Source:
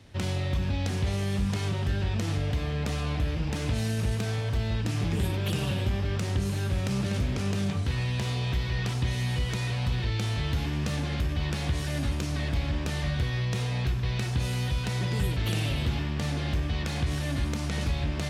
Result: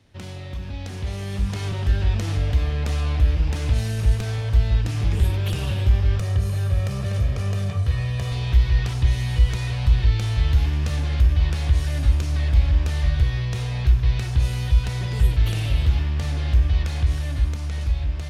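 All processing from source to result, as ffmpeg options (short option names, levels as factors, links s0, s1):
-filter_complex "[0:a]asettb=1/sr,asplit=3[s0][s1][s2];[s0]atrim=end=6.194[s3];[s1]atrim=start=6.19:end=8.32,asetpts=PTS-STARTPTS,afade=t=in:d=0.004:c=qsin,afade=t=out:st=2.126:d=0.004:c=qsin,highpass=93,equalizer=f=4400:w=0.5:g=-4.5,aecho=1:1:1.7:0.52,atrim=end_sample=93933[s4];[s2]atrim=start=8.316[s5];[s3][s4]acrossfade=d=0.004:c1=hsin:c2=qsin[s6];[s6][s5]acrossfade=d=0.004:c1=qsin:c2=hsin,bandreject=f=7700:w=28,asubboost=boost=9:cutoff=62,dynaudnorm=f=210:g=13:m=3.76,volume=0.531"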